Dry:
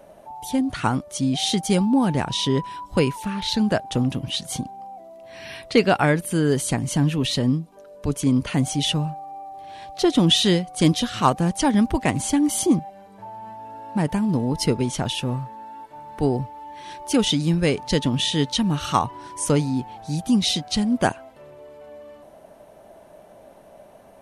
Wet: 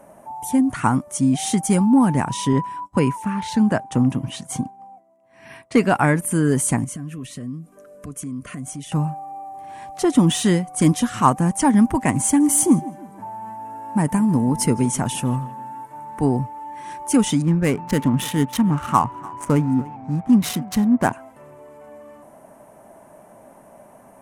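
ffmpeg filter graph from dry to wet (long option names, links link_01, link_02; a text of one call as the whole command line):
ffmpeg -i in.wav -filter_complex "[0:a]asettb=1/sr,asplit=3[link_01][link_02][link_03];[link_01]atrim=end=2.534[link_04];[link_02]atrim=start=2.53:end=5.74,asetpts=PTS-STARTPTS,afade=type=in:duration=0.004:curve=qsin,afade=type=out:start_time=3.206:duration=0.004:curve=qsin,highpass=55,agate=range=-33dB:threshold=-33dB:ratio=3:release=100:detection=peak,highshelf=frequency=9400:gain=-11[link_05];[link_03]atrim=start=5.736[link_06];[link_04][link_05]acrossfade=duration=0.004:curve1=hsin:curve2=qsin[link_07];[link_07][link_06]acrossfade=duration=0.004:curve1=qsin:curve2=hsin,asettb=1/sr,asplit=3[link_08][link_09][link_10];[link_08]atrim=end=6.844[link_11];[link_09]atrim=start=6.84:end=8.92,asetpts=PTS-STARTPTS,afade=type=in:duration=0.004:curve=qsin,afade=type=out:start_time=2.076:duration=0.004:curve=qsin,acompressor=threshold=-34dB:ratio=4:attack=3.2:release=140:knee=1:detection=peak,asuperstop=centerf=880:order=20:qfactor=3.8[link_12];[link_10]atrim=start=8.916[link_13];[link_11][link_12]acrossfade=duration=0.004:curve1=hsin:curve2=qsin[link_14];[link_14][link_13]acrossfade=duration=0.004:curve1=qsin:curve2=hsin,asettb=1/sr,asplit=3[link_15][link_16][link_17];[link_15]atrim=end=12.244[link_18];[link_16]atrim=start=12.24:end=16.05,asetpts=PTS-STARTPTS,afade=type=in:duration=0.004:curve=qsin,afade=type=out:start_time=3.806:duration=0.004:curve=qsin,highshelf=frequency=7800:gain=5.5,asplit=2[link_19][link_20];[link_20]adelay=160,lowpass=frequency=3000:poles=1,volume=-19dB,asplit=2[link_21][link_22];[link_22]adelay=160,lowpass=frequency=3000:poles=1,volume=0.44,asplit=2[link_23][link_24];[link_24]adelay=160,lowpass=frequency=3000:poles=1,volume=0.44[link_25];[link_19][link_21][link_23][link_25]amix=inputs=4:normalize=0,atrim=end_sample=168021[link_26];[link_17]atrim=start=16.046[link_27];[link_18][link_26]acrossfade=duration=0.004:curve1=hsin:curve2=qsin[link_28];[link_28][link_27]acrossfade=duration=0.004:curve1=qsin:curve2=hsin,asettb=1/sr,asplit=3[link_29][link_30][link_31];[link_29]atrim=end=17.424[link_32];[link_30]atrim=start=17.42:end=21.13,asetpts=PTS-STARTPTS,afade=type=in:duration=0.004:curve=qsin,afade=type=out:start_time=3.706:duration=0.004:curve=qsin,adynamicsmooth=sensitivity=3.5:basefreq=710,aecho=1:1:292:0.0841,atrim=end_sample=163611[link_33];[link_31]atrim=start=21.126[link_34];[link_32][link_33]acrossfade=duration=0.004:curve1=hsin:curve2=qsin[link_35];[link_35][link_34]acrossfade=duration=0.004:curve1=qsin:curve2=hsin,equalizer=frequency=10000:width=0.5:gain=10.5,acontrast=27,equalizer=frequency=125:width_type=o:width=1:gain=7,equalizer=frequency=250:width_type=o:width=1:gain=9,equalizer=frequency=1000:width_type=o:width=1:gain=10,equalizer=frequency=2000:width_type=o:width=1:gain=6,equalizer=frequency=4000:width_type=o:width=1:gain=-11,equalizer=frequency=8000:width_type=o:width=1:gain=4,volume=-10.5dB" out.wav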